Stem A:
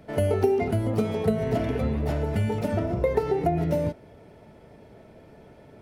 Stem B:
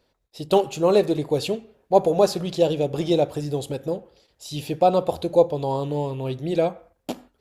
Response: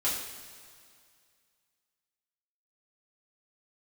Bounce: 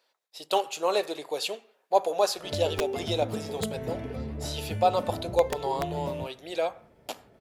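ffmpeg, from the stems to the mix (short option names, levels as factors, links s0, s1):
-filter_complex "[0:a]aeval=exprs='(mod(3.76*val(0)+1,2)-1)/3.76':c=same,adelay=2350,volume=0.355[s0];[1:a]highpass=770,volume=1[s1];[s0][s1]amix=inputs=2:normalize=0"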